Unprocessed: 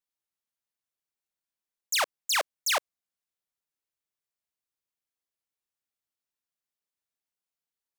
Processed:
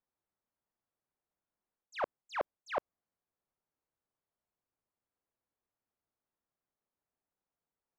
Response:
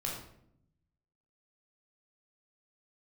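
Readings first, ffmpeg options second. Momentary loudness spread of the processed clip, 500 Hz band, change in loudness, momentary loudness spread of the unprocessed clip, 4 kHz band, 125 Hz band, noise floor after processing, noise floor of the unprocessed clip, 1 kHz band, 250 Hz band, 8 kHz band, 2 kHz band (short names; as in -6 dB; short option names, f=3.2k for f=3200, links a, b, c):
2 LU, -2.0 dB, -12.0 dB, 2 LU, -24.0 dB, n/a, under -85 dBFS, under -85 dBFS, -7.0 dB, +5.0 dB, under -30 dB, -13.5 dB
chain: -af "lowpass=1.1k,areverse,acompressor=threshold=-40dB:ratio=6,areverse,volume=7.5dB"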